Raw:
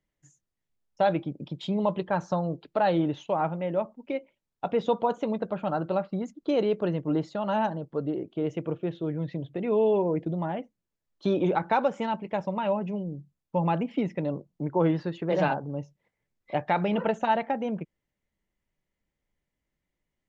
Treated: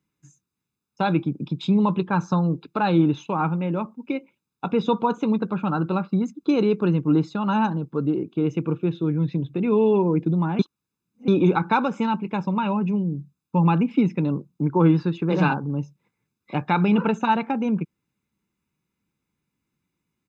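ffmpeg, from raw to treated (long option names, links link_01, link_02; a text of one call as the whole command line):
ffmpeg -i in.wav -filter_complex "[0:a]asplit=3[link_01][link_02][link_03];[link_01]atrim=end=10.592[link_04];[link_02]atrim=start=10.588:end=11.282,asetpts=PTS-STARTPTS,areverse[link_05];[link_03]atrim=start=11.278[link_06];[link_04][link_05]acrossfade=duration=0.004:curve1=hsin:curve2=hsin[link_07];[link_07][link_06]acrossfade=duration=0.004:curve1=hsin:curve2=hsin,highpass=140,lowshelf=frequency=330:gain=5,aecho=1:1:0.8:0.76,volume=3dB" out.wav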